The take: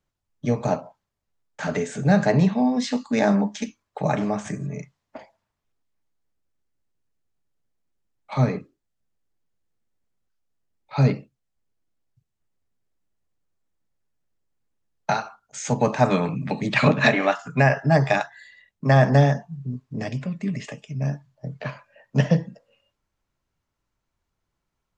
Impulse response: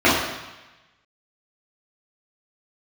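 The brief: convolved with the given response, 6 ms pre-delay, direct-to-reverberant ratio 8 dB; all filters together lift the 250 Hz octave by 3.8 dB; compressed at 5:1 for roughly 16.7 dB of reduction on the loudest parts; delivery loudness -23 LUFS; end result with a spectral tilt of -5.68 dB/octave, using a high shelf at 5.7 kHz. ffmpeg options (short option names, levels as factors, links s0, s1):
-filter_complex "[0:a]equalizer=f=250:t=o:g=5,highshelf=f=5700:g=-7.5,acompressor=threshold=0.0316:ratio=5,asplit=2[s0][s1];[1:a]atrim=start_sample=2205,adelay=6[s2];[s1][s2]afir=irnorm=-1:irlink=0,volume=0.0224[s3];[s0][s3]amix=inputs=2:normalize=0,volume=3.16"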